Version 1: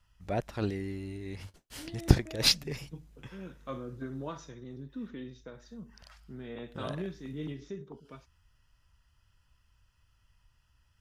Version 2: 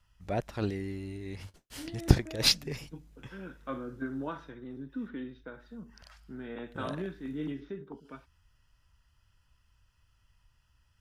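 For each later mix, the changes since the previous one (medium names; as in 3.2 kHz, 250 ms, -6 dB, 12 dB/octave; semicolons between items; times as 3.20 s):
second voice: add cabinet simulation 150–3600 Hz, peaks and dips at 280 Hz +6 dB, 850 Hz +4 dB, 1.5 kHz +9 dB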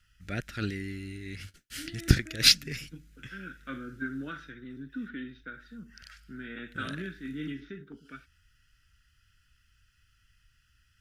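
master: add FFT filter 280 Hz 0 dB, 1 kHz -18 dB, 1.4 kHz +8 dB, 3.8 kHz +5 dB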